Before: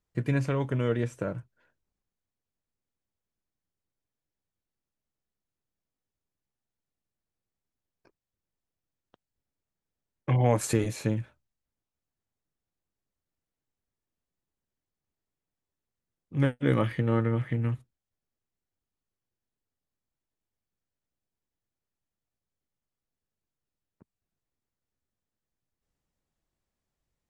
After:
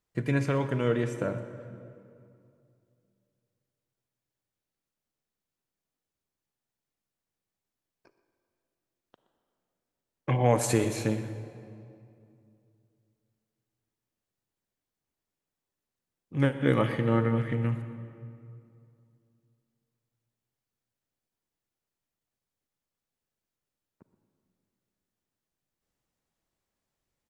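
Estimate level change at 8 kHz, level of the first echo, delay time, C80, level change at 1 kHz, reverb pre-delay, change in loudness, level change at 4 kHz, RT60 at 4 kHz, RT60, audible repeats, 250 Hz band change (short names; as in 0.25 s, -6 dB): +2.5 dB, -18.0 dB, 0.122 s, 10.5 dB, +2.5 dB, 35 ms, +0.5 dB, +2.5 dB, 1.7 s, 2.5 s, 1, +1.0 dB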